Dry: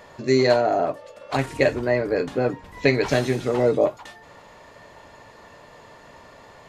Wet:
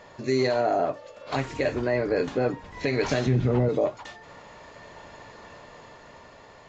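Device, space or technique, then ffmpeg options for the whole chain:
low-bitrate web radio: -filter_complex "[0:a]asettb=1/sr,asplit=3[a][b][c];[a]atrim=end=3.264[d];[b]atrim=start=3.26:end=3.69,asetpts=PTS-STARTPTS,afade=t=in:d=0.004:c=qsin,afade=t=out:st=0.426:d=0.004:c=qsin,bass=f=250:g=15,treble=f=4k:g=-12[e];[c]atrim=start=3.686[f];[d][e]acrossfade=d=0.004:c1=hsin:c2=qsin[g];[g][f]acrossfade=d=0.004:c1=qsin:c2=hsin,dynaudnorm=f=250:g=11:m=7dB,alimiter=limit=-11dB:level=0:latency=1:release=100,volume=-2.5dB" -ar 16000 -c:a aac -b:a 32k

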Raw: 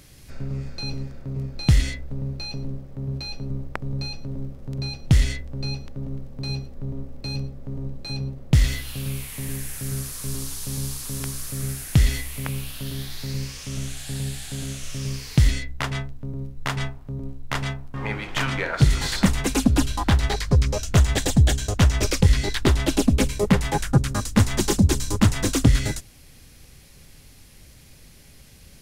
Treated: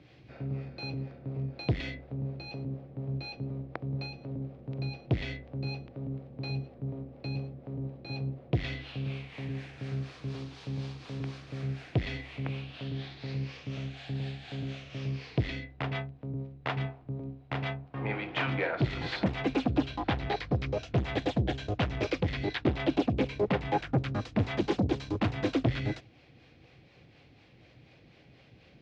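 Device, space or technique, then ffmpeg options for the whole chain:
guitar amplifier with harmonic tremolo: -filter_complex "[0:a]acrossover=split=410[a][b];[a]aeval=exprs='val(0)*(1-0.5/2+0.5/2*cos(2*PI*4.1*n/s))':c=same[c];[b]aeval=exprs='val(0)*(1-0.5/2-0.5/2*cos(2*PI*4.1*n/s))':c=same[d];[c][d]amix=inputs=2:normalize=0,asoftclip=type=tanh:threshold=-18.5dB,highpass=97,equalizer=f=120:t=q:w=4:g=6,equalizer=f=320:t=q:w=4:g=8,equalizer=f=490:t=q:w=4:g=6,equalizer=f=720:t=q:w=4:g=8,equalizer=f=2.4k:t=q:w=4:g=4,lowpass=f=3.8k:w=0.5412,lowpass=f=3.8k:w=1.3066,volume=-4.5dB"

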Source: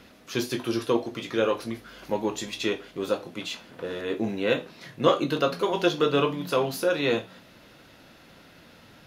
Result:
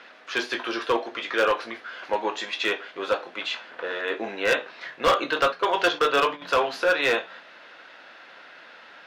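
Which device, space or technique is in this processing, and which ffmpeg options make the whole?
megaphone: -filter_complex "[0:a]highpass=660,lowpass=3.3k,equalizer=f=1.6k:t=o:w=0.44:g=5,asoftclip=type=hard:threshold=-22dB,asettb=1/sr,asplit=3[a][b][c];[a]atrim=end=5.524[d];[b]atrim=start=5.52:end=6.42,asetpts=PTS-STARTPTS,afade=t=in:d=0.004:c=qsin,afade=t=out:st=0.896:d=0.004:c=qsin,agate=range=-10dB:threshold=-36dB:ratio=16:detection=peak[e];[c]atrim=start=6.416[f];[d][e]acrossfade=d=0.004:c1=hsin:c2=qsin[g];[g][f]acrossfade=d=0.004:c1=qsin:c2=hsin,volume=7.5dB"

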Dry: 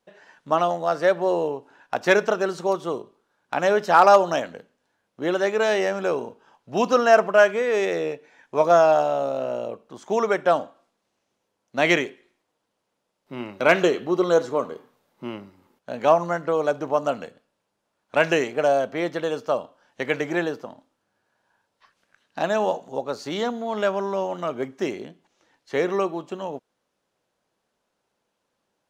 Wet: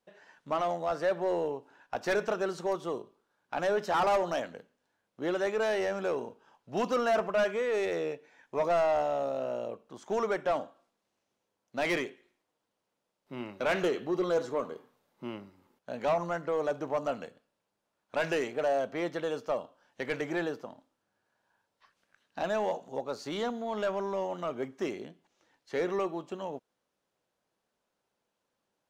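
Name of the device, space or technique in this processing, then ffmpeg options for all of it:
saturation between pre-emphasis and de-emphasis: -af "highshelf=f=2.1k:g=9.5,asoftclip=type=tanh:threshold=-15dB,highshelf=f=2.1k:g=-9.5,volume=-6dB"

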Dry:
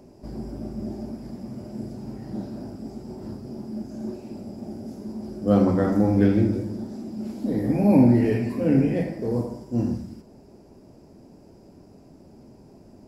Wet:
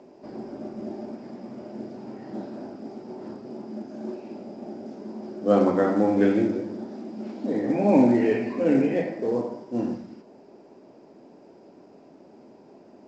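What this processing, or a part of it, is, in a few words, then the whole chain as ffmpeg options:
telephone: -af "highpass=320,lowpass=3.4k,volume=3.5dB" -ar 16000 -c:a pcm_mulaw

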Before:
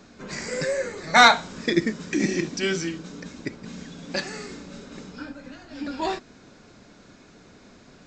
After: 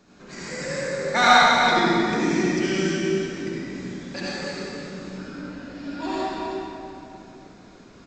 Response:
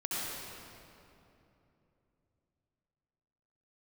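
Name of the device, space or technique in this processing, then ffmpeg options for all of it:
cave: -filter_complex "[0:a]aecho=1:1:313:0.316[a];[1:a]atrim=start_sample=2205[b];[a][b]afir=irnorm=-1:irlink=0,volume=-4.5dB"

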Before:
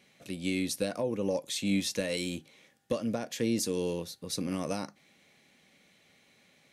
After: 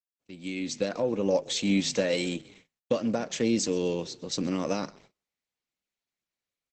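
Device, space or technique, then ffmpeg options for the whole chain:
video call: -filter_complex "[0:a]agate=range=-33dB:threshold=-55dB:ratio=3:detection=peak,asettb=1/sr,asplit=3[a][b][c];[a]atrim=end=1.324[d];[b]atrim=start=1.32:end=2.38,asetpts=PTS-STARTPTS,afade=t=in:d=0.004:c=qsin,afade=t=out:st=1.056:d=0.004:c=qsin,equalizer=f=720:w=1.1:g=3.5[e];[c]atrim=start=2.376[f];[d][e]acrossfade=d=0.004:c1=hsin:c2=qsin[g];[g][f]acrossfade=d=0.004:c1=qsin:c2=hsin,asplit=4[h][i][j][k];[i]adelay=130,afreqshift=-36,volume=-20.5dB[l];[j]adelay=260,afreqshift=-72,volume=-27.4dB[m];[k]adelay=390,afreqshift=-108,volume=-34.4dB[n];[h][l][m][n]amix=inputs=4:normalize=0,highpass=140,dynaudnorm=f=280:g=5:m=11dB,agate=range=-28dB:threshold=-46dB:ratio=16:detection=peak,volume=-6dB" -ar 48000 -c:a libopus -b:a 12k

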